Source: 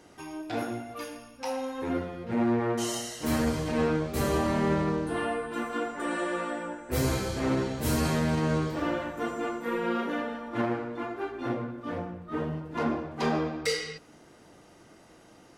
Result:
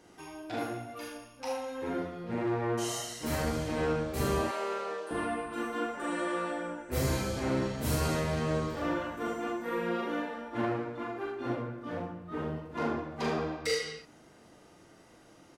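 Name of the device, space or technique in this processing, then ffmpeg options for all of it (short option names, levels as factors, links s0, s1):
slapback doubling: -filter_complex "[0:a]asettb=1/sr,asplit=3[s0][s1][s2];[s0]atrim=end=4.434[s3];[s1]atrim=start=4.43:end=5.11,asetpts=PTS-STARTPTS,afade=t=in:d=0.004:c=qsin,afade=t=out:st=0.676:d=0.004:c=qsin,highpass=f=410:w=0.5412,highpass=f=410:w=1.3066[s4];[s2]atrim=start=5.106[s5];[s3][s4]acrossfade=d=0.004:c1=hsin:c2=qsin[s6];[s6][s5]acrossfade=d=0.004:c1=qsin:c2=hsin,asplit=3[s7][s8][s9];[s8]adelay=40,volume=0.668[s10];[s9]adelay=75,volume=0.447[s11];[s7][s10][s11]amix=inputs=3:normalize=0,volume=0.596"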